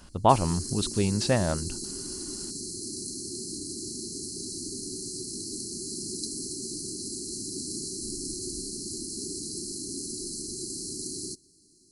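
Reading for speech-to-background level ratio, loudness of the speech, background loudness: 7.5 dB, -26.5 LUFS, -34.0 LUFS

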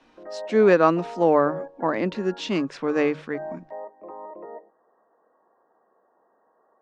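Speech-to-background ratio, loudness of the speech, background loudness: 17.0 dB, -22.5 LUFS, -39.5 LUFS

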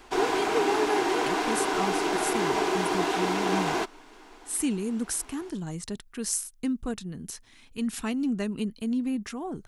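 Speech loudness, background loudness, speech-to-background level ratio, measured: -31.5 LUFS, -27.0 LUFS, -4.5 dB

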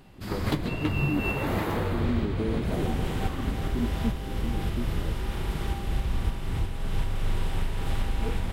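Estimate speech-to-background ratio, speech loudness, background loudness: -5.0 dB, -35.5 LUFS, -30.5 LUFS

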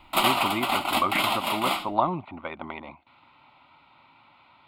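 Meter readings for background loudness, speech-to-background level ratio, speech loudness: -25.5 LUFS, -4.5 dB, -30.0 LUFS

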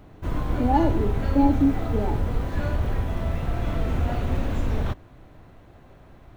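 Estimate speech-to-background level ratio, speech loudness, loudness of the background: 3.5 dB, -24.5 LUFS, -28.0 LUFS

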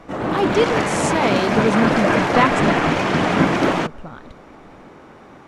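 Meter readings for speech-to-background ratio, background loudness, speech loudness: -3.0 dB, -19.0 LUFS, -22.0 LUFS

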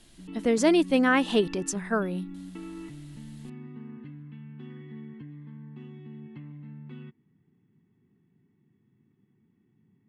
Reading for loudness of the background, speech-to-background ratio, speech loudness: -43.0 LUFS, 18.0 dB, -25.0 LUFS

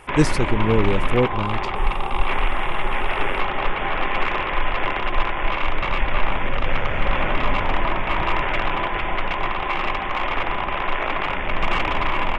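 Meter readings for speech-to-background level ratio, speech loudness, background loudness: 1.0 dB, -23.0 LUFS, -24.0 LUFS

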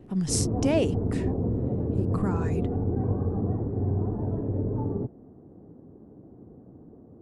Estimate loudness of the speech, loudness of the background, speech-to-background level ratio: -30.0 LUFS, -28.5 LUFS, -1.5 dB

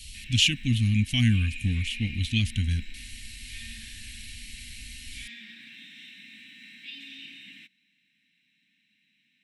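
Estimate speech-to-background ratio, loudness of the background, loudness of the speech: 17.0 dB, -42.5 LUFS, -25.5 LUFS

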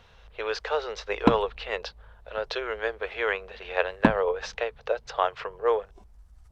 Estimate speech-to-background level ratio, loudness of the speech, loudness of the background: -2.5 dB, -29.5 LUFS, -27.0 LUFS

